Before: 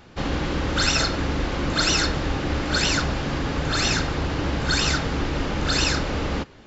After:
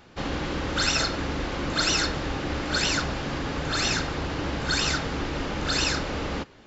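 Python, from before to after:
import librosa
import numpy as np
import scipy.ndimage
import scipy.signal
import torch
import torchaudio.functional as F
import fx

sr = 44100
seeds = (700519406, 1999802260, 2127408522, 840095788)

y = fx.low_shelf(x, sr, hz=180.0, db=-4.5)
y = F.gain(torch.from_numpy(y), -2.5).numpy()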